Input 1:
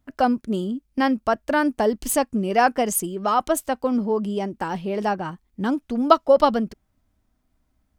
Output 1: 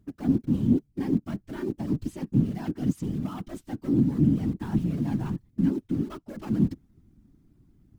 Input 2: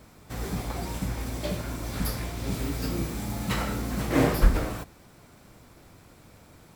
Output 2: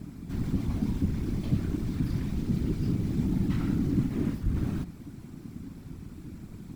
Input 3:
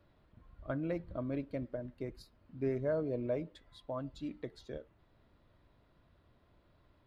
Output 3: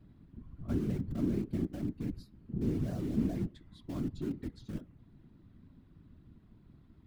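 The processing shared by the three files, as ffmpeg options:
-filter_complex "[0:a]areverse,acompressor=threshold=-28dB:ratio=12,areverse,asoftclip=type=tanh:threshold=-30dB,acrossover=split=5700[a][b];[b]acompressor=threshold=-57dB:ratio=4:attack=1:release=60[c];[a][c]amix=inputs=2:normalize=0,asplit=2[d][e];[e]aeval=exprs='(mod(100*val(0)+1,2)-1)/100':c=same,volume=-6.5dB[f];[d][f]amix=inputs=2:normalize=0,lowshelf=f=320:t=q:w=3:g=12,afftfilt=real='hypot(re,im)*cos(2*PI*random(0))':imag='hypot(re,im)*sin(2*PI*random(1))':win_size=512:overlap=0.75"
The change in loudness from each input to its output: -5.5, -0.5, +3.0 LU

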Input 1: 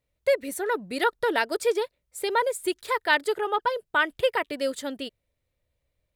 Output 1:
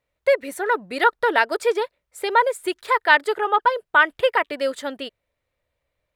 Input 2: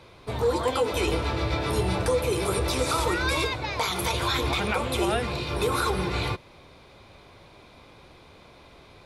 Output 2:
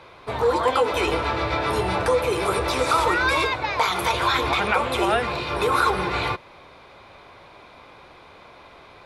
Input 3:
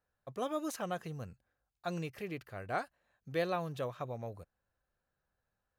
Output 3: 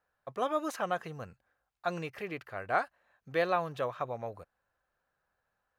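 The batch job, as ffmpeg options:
-af "equalizer=f=1.2k:w=0.37:g=11.5,volume=-3.5dB"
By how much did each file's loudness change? +6.0, +4.0, +4.5 LU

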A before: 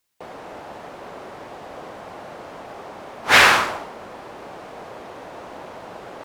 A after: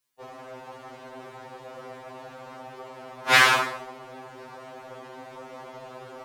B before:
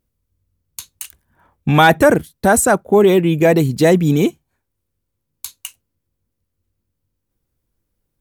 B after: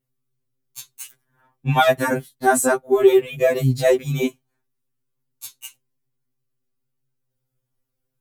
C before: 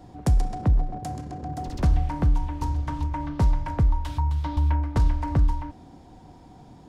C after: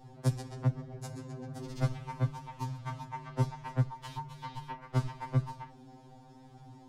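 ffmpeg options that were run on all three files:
-af "afftfilt=real='re*2.45*eq(mod(b,6),0)':imag='im*2.45*eq(mod(b,6),0)':win_size=2048:overlap=0.75,volume=-2.5dB"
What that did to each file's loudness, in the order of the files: -4.5, -5.0, -10.0 LU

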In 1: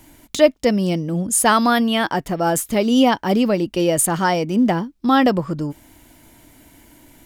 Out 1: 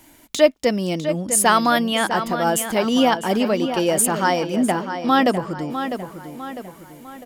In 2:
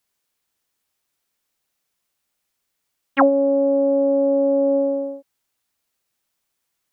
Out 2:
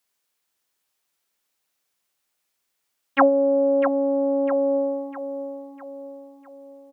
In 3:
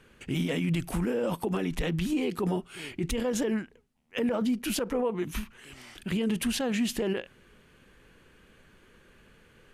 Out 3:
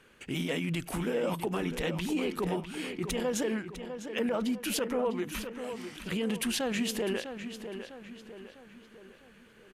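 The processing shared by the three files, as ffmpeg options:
-filter_complex "[0:a]lowshelf=f=200:g=-9.5,asplit=2[a][b];[b]adelay=652,lowpass=f=4.4k:p=1,volume=-9dB,asplit=2[c][d];[d]adelay=652,lowpass=f=4.4k:p=1,volume=0.47,asplit=2[e][f];[f]adelay=652,lowpass=f=4.4k:p=1,volume=0.47,asplit=2[g][h];[h]adelay=652,lowpass=f=4.4k:p=1,volume=0.47,asplit=2[i][j];[j]adelay=652,lowpass=f=4.4k:p=1,volume=0.47[k];[c][e][g][i][k]amix=inputs=5:normalize=0[l];[a][l]amix=inputs=2:normalize=0"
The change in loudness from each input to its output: -1.5, -3.0, -2.5 LU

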